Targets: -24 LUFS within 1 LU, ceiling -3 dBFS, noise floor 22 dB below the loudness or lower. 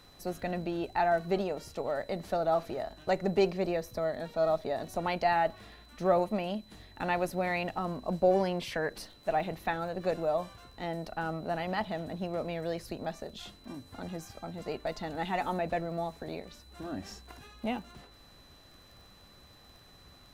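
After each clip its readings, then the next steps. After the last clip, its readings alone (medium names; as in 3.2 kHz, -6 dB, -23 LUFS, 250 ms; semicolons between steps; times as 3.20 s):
tick rate 27 per s; steady tone 4 kHz; tone level -59 dBFS; loudness -33.0 LUFS; peak level -13.0 dBFS; loudness target -24.0 LUFS
-> de-click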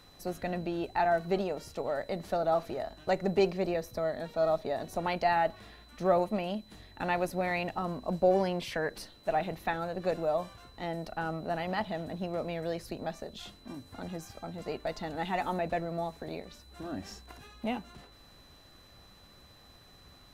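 tick rate 0.049 per s; steady tone 4 kHz; tone level -59 dBFS
-> band-stop 4 kHz, Q 30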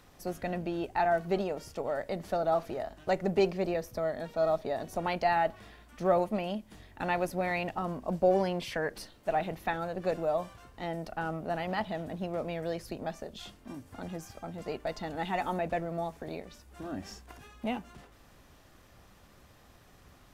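steady tone not found; loudness -33.0 LUFS; peak level -13.0 dBFS; loudness target -24.0 LUFS
-> trim +9 dB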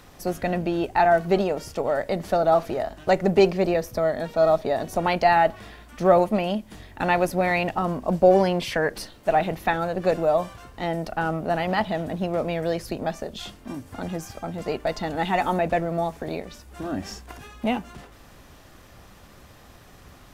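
loudness -24.0 LUFS; peak level -4.0 dBFS; noise floor -50 dBFS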